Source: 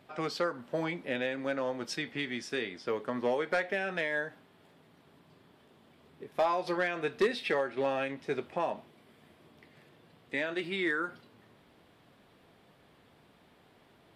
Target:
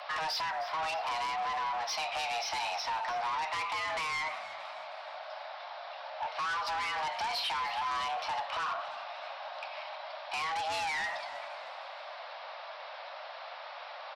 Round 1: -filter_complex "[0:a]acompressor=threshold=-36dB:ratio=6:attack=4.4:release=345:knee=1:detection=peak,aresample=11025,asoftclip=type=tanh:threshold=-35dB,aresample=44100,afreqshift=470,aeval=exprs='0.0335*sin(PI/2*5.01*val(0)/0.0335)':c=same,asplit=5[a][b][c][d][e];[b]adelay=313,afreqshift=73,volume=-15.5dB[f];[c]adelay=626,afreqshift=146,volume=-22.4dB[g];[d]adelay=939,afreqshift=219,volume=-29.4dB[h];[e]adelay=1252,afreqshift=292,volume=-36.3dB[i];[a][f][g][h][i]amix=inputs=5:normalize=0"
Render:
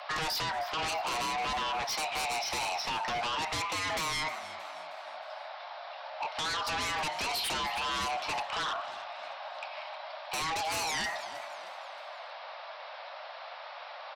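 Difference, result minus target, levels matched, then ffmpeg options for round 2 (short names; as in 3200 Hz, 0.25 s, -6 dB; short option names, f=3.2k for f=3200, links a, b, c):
soft clip: distortion -10 dB
-filter_complex "[0:a]acompressor=threshold=-36dB:ratio=6:attack=4.4:release=345:knee=1:detection=peak,aresample=11025,asoftclip=type=tanh:threshold=-47dB,aresample=44100,afreqshift=470,aeval=exprs='0.0335*sin(PI/2*5.01*val(0)/0.0335)':c=same,asplit=5[a][b][c][d][e];[b]adelay=313,afreqshift=73,volume=-15.5dB[f];[c]adelay=626,afreqshift=146,volume=-22.4dB[g];[d]adelay=939,afreqshift=219,volume=-29.4dB[h];[e]adelay=1252,afreqshift=292,volume=-36.3dB[i];[a][f][g][h][i]amix=inputs=5:normalize=0"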